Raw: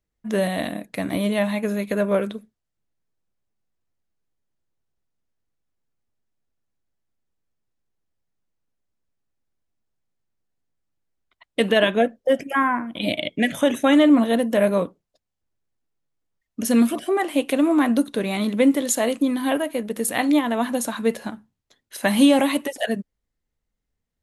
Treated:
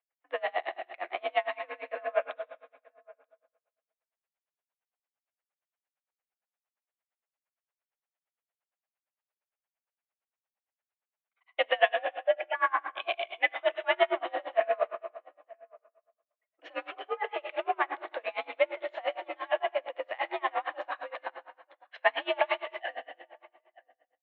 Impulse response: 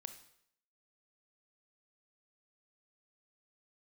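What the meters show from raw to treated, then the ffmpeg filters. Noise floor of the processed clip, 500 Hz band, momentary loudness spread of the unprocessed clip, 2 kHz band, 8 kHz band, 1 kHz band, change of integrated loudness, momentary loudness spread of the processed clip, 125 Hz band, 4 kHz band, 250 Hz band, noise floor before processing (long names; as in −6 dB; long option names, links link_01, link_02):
below −85 dBFS, −8.5 dB, 11 LU, −4.5 dB, below −40 dB, −4.0 dB, −10.5 dB, 13 LU, below −40 dB, −9.0 dB, −31.5 dB, −81 dBFS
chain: -filter_complex "[0:a]asplit=2[link_01][link_02];[link_02]asoftclip=type=hard:threshold=-21.5dB,volume=-3.5dB[link_03];[link_01][link_03]amix=inputs=2:normalize=0,asplit=2[link_04][link_05];[link_05]adelay=932.9,volume=-25dB,highshelf=frequency=4000:gain=-21[link_06];[link_04][link_06]amix=inputs=2:normalize=0[link_07];[1:a]atrim=start_sample=2205,asetrate=24255,aresample=44100[link_08];[link_07][link_08]afir=irnorm=-1:irlink=0,highpass=frequency=530:width_type=q:width=0.5412,highpass=frequency=530:width_type=q:width=1.307,lowpass=frequency=2900:width_type=q:width=0.5176,lowpass=frequency=2900:width_type=q:width=0.7071,lowpass=frequency=2900:width_type=q:width=1.932,afreqshift=66,aeval=exprs='val(0)*pow(10,-30*(0.5-0.5*cos(2*PI*8.7*n/s))/20)':channel_layout=same"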